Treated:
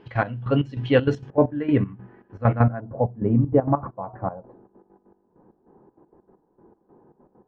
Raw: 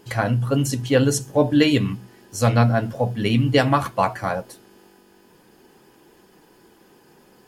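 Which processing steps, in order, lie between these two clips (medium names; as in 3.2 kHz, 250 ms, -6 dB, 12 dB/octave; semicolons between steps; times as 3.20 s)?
low-pass 3.2 kHz 24 dB/octave, from 1.30 s 1.8 kHz, from 2.80 s 1 kHz; trance gate "x.x...xx..xxx.x." 196 bpm -12 dB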